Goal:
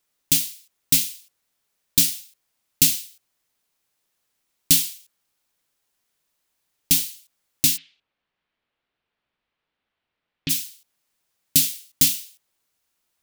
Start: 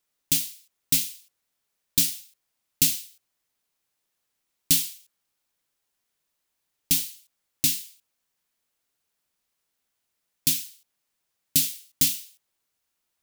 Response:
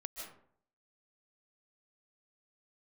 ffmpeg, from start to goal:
-filter_complex "[0:a]asplit=3[link_01][link_02][link_03];[link_01]afade=type=out:start_time=7.76:duration=0.02[link_04];[link_02]lowpass=frequency=3400:width=0.5412,lowpass=frequency=3400:width=1.3066,afade=type=in:start_time=7.76:duration=0.02,afade=type=out:start_time=10.49:duration=0.02[link_05];[link_03]afade=type=in:start_time=10.49:duration=0.02[link_06];[link_04][link_05][link_06]amix=inputs=3:normalize=0,volume=4dB"

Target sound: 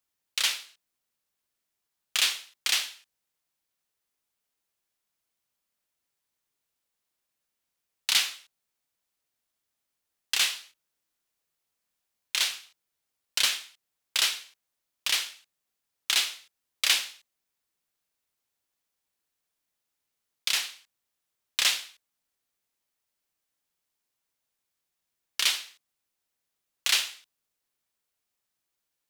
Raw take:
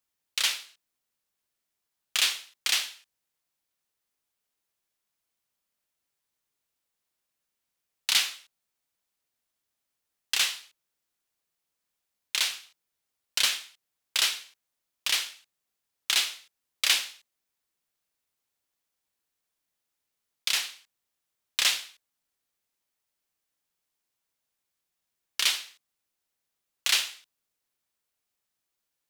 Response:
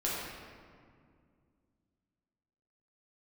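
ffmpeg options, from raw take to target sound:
-filter_complex "[0:a]asettb=1/sr,asplit=3[link_01][link_02][link_03];[link_01]atrim=end=10.394[link_04];[link_02]atrim=start=10.39:end=12.44,asetpts=PTS-STARTPTS,afade=type=in:duration=0.004:curve=qsin,afade=type=out:start_time=2.046:duration=0.004:curve=qsin,asplit=2[link_05][link_06];[link_06]adelay=23,volume=-7.5dB[link_07];[link_05][link_07]amix=inputs=2:normalize=0,atrim=end_sample=90405[link_08];[link_03]atrim=start=12.436[link_09];[link_04][link_08]acrossfade=duration=0.004:curve1=hsin:curve2=qsin[link_10];[link_10][link_09]acrossfade=duration=0.004:curve1=qsin:curve2=hsin"

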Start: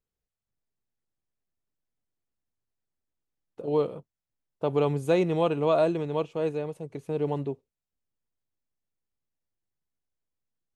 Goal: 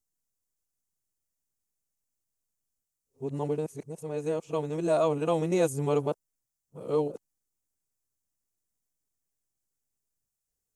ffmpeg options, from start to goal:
ffmpeg -i in.wav -af "areverse,highshelf=frequency=5000:width_type=q:width=1.5:gain=10.5,volume=-2dB" out.wav

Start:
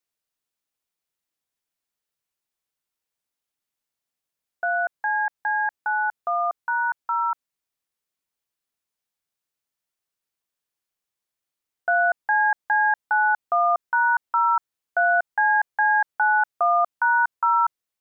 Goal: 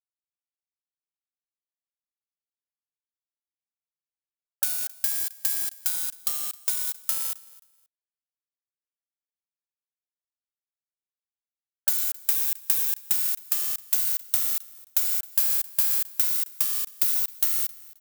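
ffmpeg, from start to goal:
ffmpeg -i in.wav -filter_complex "[0:a]afftfilt=real='re*gte(hypot(re,im),0.0631)':imag='im*gte(hypot(re,im),0.0631)':win_size=1024:overlap=0.75,aeval=exprs='(mod(25.1*val(0)+1,2)-1)/25.1':channel_layout=same,equalizer=frequency=960:width=0.63:gain=-11.5,acompressor=threshold=-39dB:ratio=6,aemphasis=mode=production:type=riaa,aeval=exprs='0.668*(cos(1*acos(clip(val(0)/0.668,-1,1)))-cos(1*PI/2))+0.0841*(cos(7*acos(clip(val(0)/0.668,-1,1)))-cos(7*PI/2))':channel_layout=same,asplit=2[link_01][link_02];[link_02]aecho=0:1:265|530:0.0841|0.0168[link_03];[link_01][link_03]amix=inputs=2:normalize=0" out.wav

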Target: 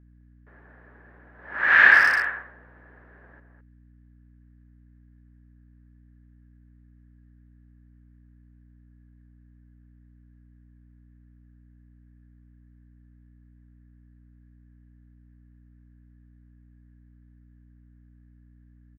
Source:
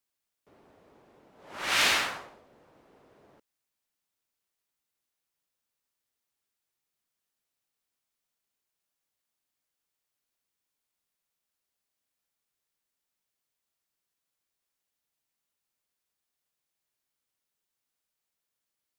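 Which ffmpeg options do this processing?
ffmpeg -i in.wav -filter_complex "[0:a]lowpass=frequency=1700:width_type=q:width=13,aeval=exprs='val(0)+0.00224*(sin(2*PI*60*n/s)+sin(2*PI*2*60*n/s)/2+sin(2*PI*3*60*n/s)/3+sin(2*PI*4*60*n/s)/4+sin(2*PI*5*60*n/s)/5)':channel_layout=same,asplit=2[link_01][link_02];[link_02]adelay=210,highpass=300,lowpass=3400,asoftclip=type=hard:threshold=-12.5dB,volume=-7dB[link_03];[link_01][link_03]amix=inputs=2:normalize=0" out.wav

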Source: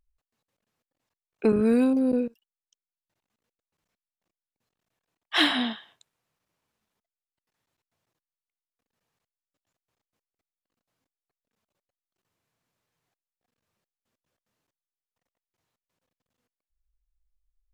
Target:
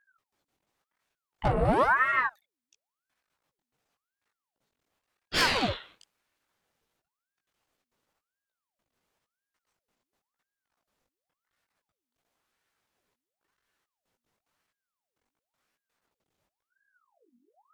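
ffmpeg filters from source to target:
ffmpeg -i in.wav -af "aeval=exprs='(tanh(14.1*val(0)+0.2)-tanh(0.2))/14.1':channel_layout=same,flanger=delay=15.5:depth=7.1:speed=2.6,aeval=exprs='val(0)*sin(2*PI*940*n/s+940*0.75/0.95*sin(2*PI*0.95*n/s))':channel_layout=same,volume=8dB" out.wav

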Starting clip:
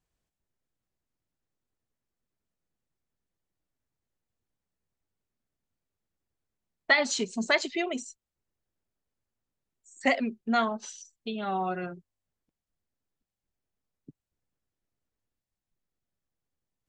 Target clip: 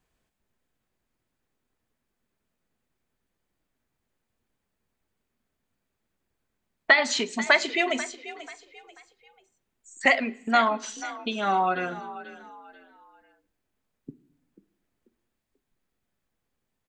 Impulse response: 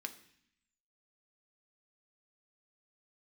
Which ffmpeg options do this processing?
-filter_complex "[0:a]acrossover=split=600|5800[link_01][link_02][link_03];[link_01]acompressor=threshold=-42dB:ratio=4[link_04];[link_02]acompressor=threshold=-26dB:ratio=4[link_05];[link_03]acompressor=threshold=-44dB:ratio=4[link_06];[link_04][link_05][link_06]amix=inputs=3:normalize=0,asplit=4[link_07][link_08][link_09][link_10];[link_08]adelay=488,afreqshift=42,volume=-15dB[link_11];[link_09]adelay=976,afreqshift=84,volume=-24.4dB[link_12];[link_10]adelay=1464,afreqshift=126,volume=-33.7dB[link_13];[link_07][link_11][link_12][link_13]amix=inputs=4:normalize=0,asplit=2[link_14][link_15];[1:a]atrim=start_sample=2205,lowpass=4200[link_16];[link_15][link_16]afir=irnorm=-1:irlink=0,volume=-1.5dB[link_17];[link_14][link_17]amix=inputs=2:normalize=0,volume=6dB"

